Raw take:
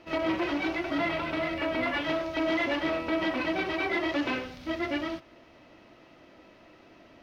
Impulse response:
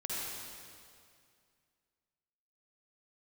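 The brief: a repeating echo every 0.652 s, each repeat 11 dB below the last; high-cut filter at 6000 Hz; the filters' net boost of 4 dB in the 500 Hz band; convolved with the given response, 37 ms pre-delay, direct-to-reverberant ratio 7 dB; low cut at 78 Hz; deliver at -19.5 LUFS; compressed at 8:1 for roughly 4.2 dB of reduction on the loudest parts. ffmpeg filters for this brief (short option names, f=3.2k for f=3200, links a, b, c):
-filter_complex "[0:a]highpass=78,lowpass=6k,equalizer=f=500:t=o:g=6,acompressor=threshold=-26dB:ratio=8,aecho=1:1:652|1304|1956:0.282|0.0789|0.0221,asplit=2[a][b];[1:a]atrim=start_sample=2205,adelay=37[c];[b][c]afir=irnorm=-1:irlink=0,volume=-10.5dB[d];[a][d]amix=inputs=2:normalize=0,volume=10dB"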